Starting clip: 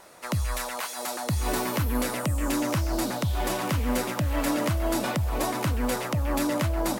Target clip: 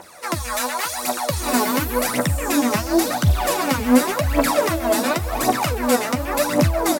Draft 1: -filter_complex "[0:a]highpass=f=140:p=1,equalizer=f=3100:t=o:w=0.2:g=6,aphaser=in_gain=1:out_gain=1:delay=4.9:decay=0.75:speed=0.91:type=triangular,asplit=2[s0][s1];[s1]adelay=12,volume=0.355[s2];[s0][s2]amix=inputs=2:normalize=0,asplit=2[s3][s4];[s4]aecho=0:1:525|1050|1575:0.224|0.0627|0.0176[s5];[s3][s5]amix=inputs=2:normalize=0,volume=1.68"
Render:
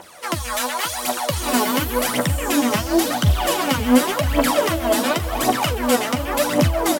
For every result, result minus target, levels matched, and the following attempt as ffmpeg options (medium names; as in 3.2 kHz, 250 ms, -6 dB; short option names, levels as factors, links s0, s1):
echo-to-direct +6 dB; 4 kHz band +3.0 dB
-filter_complex "[0:a]highpass=f=140:p=1,equalizer=f=3100:t=o:w=0.2:g=6,aphaser=in_gain=1:out_gain=1:delay=4.9:decay=0.75:speed=0.91:type=triangular,asplit=2[s0][s1];[s1]adelay=12,volume=0.355[s2];[s0][s2]amix=inputs=2:normalize=0,asplit=2[s3][s4];[s4]aecho=0:1:525|1050:0.112|0.0314[s5];[s3][s5]amix=inputs=2:normalize=0,volume=1.68"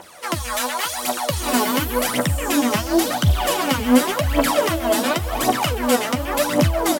4 kHz band +3.0 dB
-filter_complex "[0:a]highpass=f=140:p=1,equalizer=f=3100:t=o:w=0.2:g=-4.5,aphaser=in_gain=1:out_gain=1:delay=4.9:decay=0.75:speed=0.91:type=triangular,asplit=2[s0][s1];[s1]adelay=12,volume=0.355[s2];[s0][s2]amix=inputs=2:normalize=0,asplit=2[s3][s4];[s4]aecho=0:1:525|1050:0.112|0.0314[s5];[s3][s5]amix=inputs=2:normalize=0,volume=1.68"